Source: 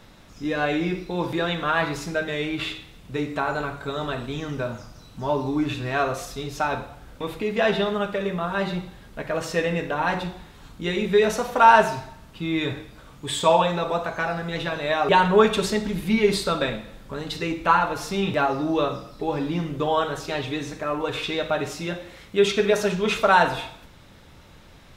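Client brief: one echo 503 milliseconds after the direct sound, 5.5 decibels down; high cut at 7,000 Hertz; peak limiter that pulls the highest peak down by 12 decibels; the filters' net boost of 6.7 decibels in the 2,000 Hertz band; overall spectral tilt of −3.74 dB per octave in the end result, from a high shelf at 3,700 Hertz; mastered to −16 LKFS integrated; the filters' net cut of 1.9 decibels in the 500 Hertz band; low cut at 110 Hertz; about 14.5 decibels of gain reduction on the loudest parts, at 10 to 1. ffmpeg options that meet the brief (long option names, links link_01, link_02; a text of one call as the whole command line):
ffmpeg -i in.wav -af "highpass=110,lowpass=7000,equalizer=frequency=500:width_type=o:gain=-3,equalizer=frequency=2000:width_type=o:gain=7,highshelf=frequency=3700:gain=9,acompressor=threshold=-22dB:ratio=10,alimiter=limit=-21dB:level=0:latency=1,aecho=1:1:503:0.531,volume=13.5dB" out.wav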